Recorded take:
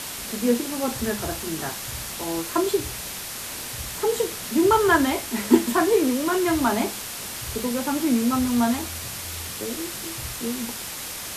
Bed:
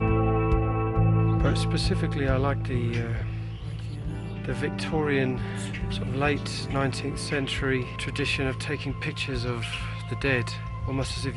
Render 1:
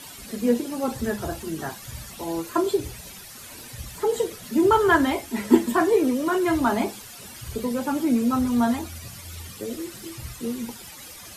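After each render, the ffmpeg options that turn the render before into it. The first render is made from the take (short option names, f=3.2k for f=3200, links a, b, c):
-af "afftdn=nr=13:nf=-34"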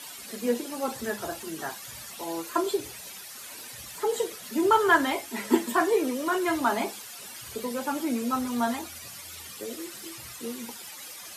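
-af "highpass=f=570:p=1"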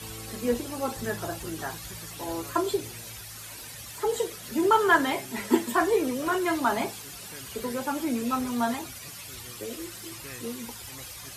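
-filter_complex "[1:a]volume=-20dB[a];[0:a][a]amix=inputs=2:normalize=0"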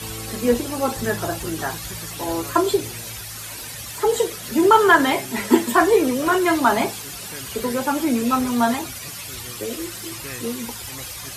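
-af "volume=8dB,alimiter=limit=-2dB:level=0:latency=1"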